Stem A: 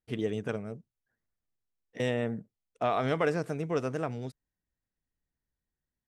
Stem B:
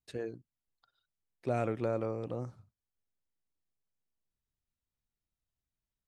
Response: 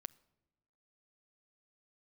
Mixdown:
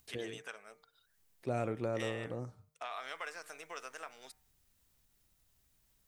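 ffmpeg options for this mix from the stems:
-filter_complex "[0:a]highpass=1.2k,acompressor=threshold=-48dB:ratio=2,volume=2dB[a];[1:a]acompressor=mode=upward:threshold=-54dB:ratio=2.5,volume=-3dB[b];[a][b]amix=inputs=2:normalize=0,highshelf=f=6.9k:g=7,bandreject=f=152.1:t=h:w=4,bandreject=f=304.2:t=h:w=4,bandreject=f=456.3:t=h:w=4,bandreject=f=608.4:t=h:w=4,bandreject=f=760.5:t=h:w=4,bandreject=f=912.6:t=h:w=4,bandreject=f=1.0647k:t=h:w=4,bandreject=f=1.2168k:t=h:w=4,bandreject=f=1.3689k:t=h:w=4,bandreject=f=1.521k:t=h:w=4,bandreject=f=1.6731k:t=h:w=4,bandreject=f=1.8252k:t=h:w=4,bandreject=f=1.9773k:t=h:w=4,bandreject=f=2.1294k:t=h:w=4,bandreject=f=2.2815k:t=h:w=4,bandreject=f=2.4336k:t=h:w=4"

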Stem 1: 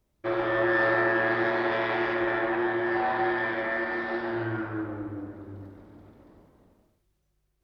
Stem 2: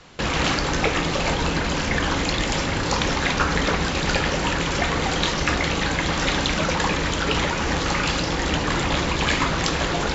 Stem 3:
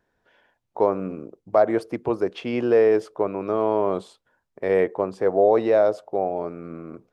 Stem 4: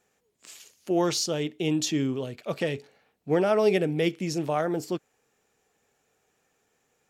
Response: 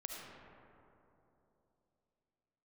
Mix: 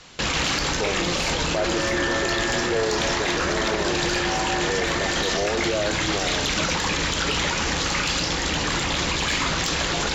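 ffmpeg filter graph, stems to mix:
-filter_complex "[0:a]adelay=1300,volume=2.5dB[a];[1:a]highshelf=f=2.4k:g=10,asoftclip=type=tanh:threshold=-5.5dB,volume=-2.5dB[b];[2:a]volume=-3dB[c];[3:a]adelay=50,volume=-6.5dB[d];[a][b][c][d]amix=inputs=4:normalize=0,alimiter=limit=-14.5dB:level=0:latency=1:release=31"

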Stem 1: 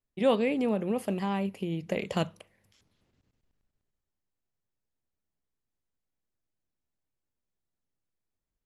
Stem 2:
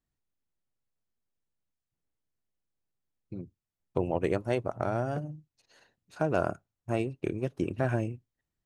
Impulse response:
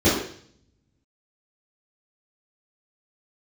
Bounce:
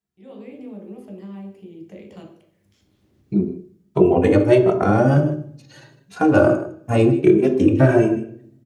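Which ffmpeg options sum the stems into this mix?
-filter_complex "[0:a]acompressor=threshold=-55dB:ratio=1.5,volume=-10.5dB,afade=t=in:st=2.42:d=0.61:silence=0.316228,asplit=2[a][b];[b]volume=-19.5dB[c];[1:a]highpass=96,asplit=2[d][e];[e]adelay=2.6,afreqshift=1.5[f];[d][f]amix=inputs=2:normalize=1,volume=2.5dB,asplit=3[g][h][i];[h]volume=-23.5dB[j];[i]volume=-16dB[k];[2:a]atrim=start_sample=2205[l];[c][j]amix=inputs=2:normalize=0[m];[m][l]afir=irnorm=-1:irlink=0[n];[k]aecho=0:1:156:1[o];[a][g][n][o]amix=inputs=4:normalize=0,dynaudnorm=f=130:g=5:m=14dB"

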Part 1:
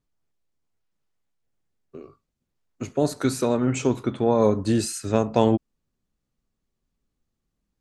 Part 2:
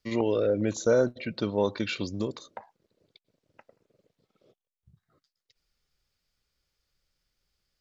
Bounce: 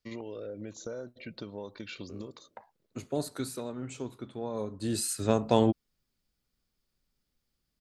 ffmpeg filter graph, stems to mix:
-filter_complex "[0:a]aexciter=amount=2:drive=2.1:freq=3.4k,adelay=150,volume=3.5dB,afade=t=out:st=2.97:d=0.68:silence=0.398107,afade=t=in:st=4.77:d=0.35:silence=0.266073[a];[1:a]acompressor=threshold=-31dB:ratio=5,volume=-6.5dB[b];[a][b]amix=inputs=2:normalize=0"

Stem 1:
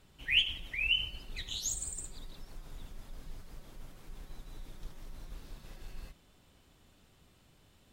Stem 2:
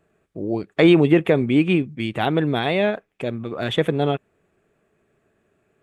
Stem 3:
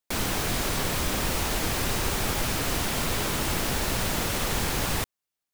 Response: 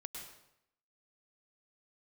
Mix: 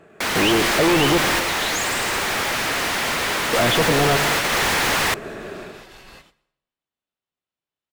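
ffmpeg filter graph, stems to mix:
-filter_complex "[0:a]agate=range=-38dB:threshold=-55dB:ratio=16:detection=peak,adelay=100,volume=-5dB,asplit=2[a][b];[b]volume=-14.5dB[c];[1:a]lowshelf=f=470:g=9,dynaudnorm=f=120:g=5:m=17dB,asoftclip=type=hard:threshold=-14.5dB,volume=-5.5dB,asplit=3[d][e][f];[d]atrim=end=1.18,asetpts=PTS-STARTPTS,afade=t=out:st=1.176:d=0.004:c=hsin[g];[e]atrim=start=1.18:end=3.53,asetpts=PTS-STARTPTS,volume=0[h];[f]atrim=start=3.53,asetpts=PTS-STARTPTS,afade=t=in:d=0.004:c=hsin[i];[g][h][i]concat=n=3:v=0:a=1,asplit=3[j][k][l];[k]volume=-4.5dB[m];[2:a]equalizer=f=1.9k:t=o:w=0.59:g=4,adelay=100,volume=-1dB[n];[l]apad=whole_len=248639[o];[n][o]sidechaingate=range=-7dB:threshold=-53dB:ratio=16:detection=peak[p];[3:a]atrim=start_sample=2205[q];[c][m]amix=inputs=2:normalize=0[r];[r][q]afir=irnorm=-1:irlink=0[s];[a][j][p][s]amix=inputs=4:normalize=0,asplit=2[t][u];[u]highpass=f=720:p=1,volume=26dB,asoftclip=type=tanh:threshold=-9.5dB[v];[t][v]amix=inputs=2:normalize=0,lowpass=f=3.6k:p=1,volume=-6dB"

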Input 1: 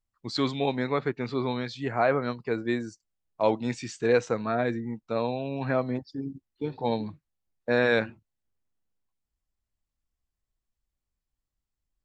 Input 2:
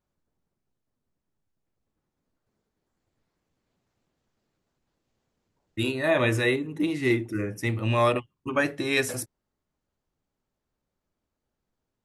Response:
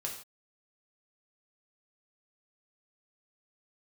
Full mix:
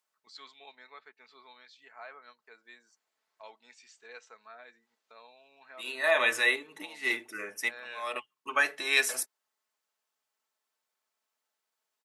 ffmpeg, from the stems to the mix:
-filter_complex "[0:a]highpass=1.1k,agate=range=-23dB:threshold=-51dB:ratio=16:detection=peak,acompressor=mode=upward:threshold=-40dB:ratio=2.5,volume=-16.5dB,asplit=2[a][b];[1:a]highpass=890,volume=1.5dB[c];[b]apad=whole_len=530968[d];[c][d]sidechaincompress=threshold=-58dB:ratio=6:attack=7:release=186[e];[a][e]amix=inputs=2:normalize=0,aecho=1:1:4.6:0.36"

